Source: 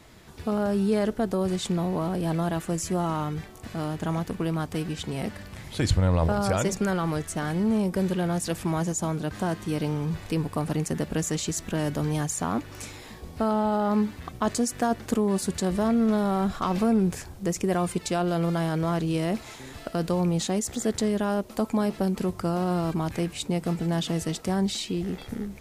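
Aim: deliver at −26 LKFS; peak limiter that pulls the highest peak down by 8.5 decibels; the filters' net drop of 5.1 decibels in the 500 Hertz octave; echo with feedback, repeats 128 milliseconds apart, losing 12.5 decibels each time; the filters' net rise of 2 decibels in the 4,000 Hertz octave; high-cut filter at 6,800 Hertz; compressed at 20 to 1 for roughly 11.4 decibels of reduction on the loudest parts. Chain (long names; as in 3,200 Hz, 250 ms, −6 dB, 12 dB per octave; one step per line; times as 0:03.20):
low-pass filter 6,800 Hz
parametric band 500 Hz −7 dB
parametric band 4,000 Hz +3 dB
downward compressor 20 to 1, threshold −28 dBFS
brickwall limiter −25.5 dBFS
repeating echo 128 ms, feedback 24%, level −12.5 dB
level +9 dB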